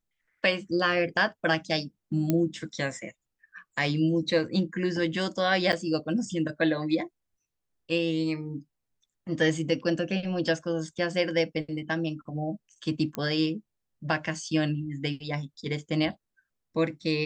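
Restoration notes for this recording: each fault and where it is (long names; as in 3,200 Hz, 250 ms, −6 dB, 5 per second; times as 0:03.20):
0:02.30: click −12 dBFS
0:05.72–0:05.73: drop-out 8.9 ms
0:13.15: click −17 dBFS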